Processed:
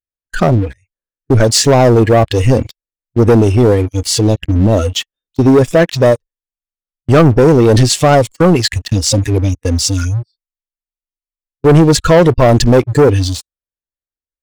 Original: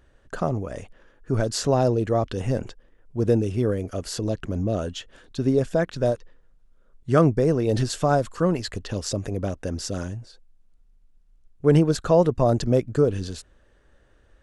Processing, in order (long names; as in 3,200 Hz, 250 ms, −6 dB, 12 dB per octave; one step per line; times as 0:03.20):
noise reduction from a noise print of the clip's start 30 dB
noise gate −37 dBFS, range −14 dB
in parallel at −1 dB: brickwall limiter −16 dBFS, peak gain reduction 11 dB
on the sum: leveller curve on the samples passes 3
level +1.5 dB